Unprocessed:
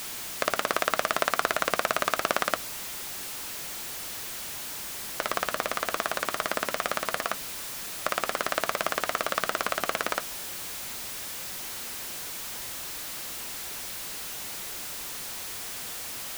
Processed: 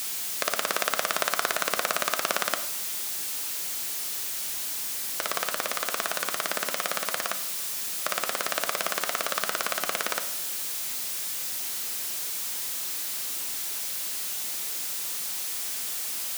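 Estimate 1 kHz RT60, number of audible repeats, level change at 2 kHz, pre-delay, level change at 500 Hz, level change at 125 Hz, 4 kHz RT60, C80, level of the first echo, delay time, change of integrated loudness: 0.75 s, none, -0.5 dB, 30 ms, -2.5 dB, -5.5 dB, 0.60 s, 14.0 dB, none, none, +2.5 dB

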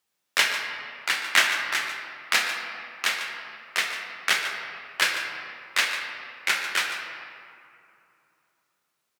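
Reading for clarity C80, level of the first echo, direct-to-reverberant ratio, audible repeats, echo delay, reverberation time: 4.0 dB, -11.5 dB, 2.0 dB, 1, 0.146 s, 2.7 s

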